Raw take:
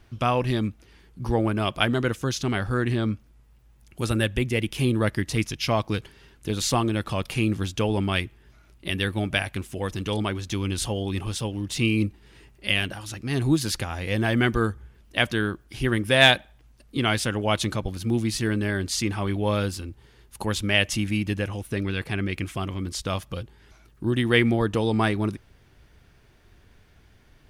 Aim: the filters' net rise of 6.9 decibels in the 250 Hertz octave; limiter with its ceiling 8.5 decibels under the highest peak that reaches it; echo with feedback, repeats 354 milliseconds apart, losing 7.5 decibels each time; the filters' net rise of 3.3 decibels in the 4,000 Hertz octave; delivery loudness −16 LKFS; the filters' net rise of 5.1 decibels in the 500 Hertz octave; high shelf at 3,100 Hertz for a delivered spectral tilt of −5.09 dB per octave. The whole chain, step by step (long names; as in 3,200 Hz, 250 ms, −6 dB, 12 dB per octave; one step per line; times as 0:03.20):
parametric band 250 Hz +7.5 dB
parametric band 500 Hz +4 dB
high-shelf EQ 3,100 Hz −4.5 dB
parametric band 4,000 Hz +7.5 dB
brickwall limiter −9.5 dBFS
repeating echo 354 ms, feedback 42%, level −7.5 dB
level +6 dB